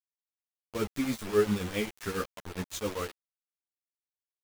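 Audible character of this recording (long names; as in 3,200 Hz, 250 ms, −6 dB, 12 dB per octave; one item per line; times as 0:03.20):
tremolo triangle 7.4 Hz, depth 85%
a quantiser's noise floor 6 bits, dither none
a shimmering, thickened sound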